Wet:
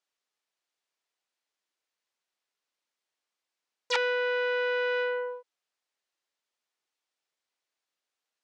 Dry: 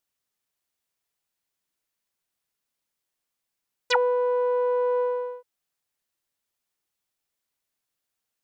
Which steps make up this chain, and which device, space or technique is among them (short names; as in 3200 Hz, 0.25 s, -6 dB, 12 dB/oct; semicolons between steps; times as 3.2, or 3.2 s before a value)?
public-address speaker with an overloaded transformer (core saturation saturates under 3600 Hz; BPF 350–6100 Hz)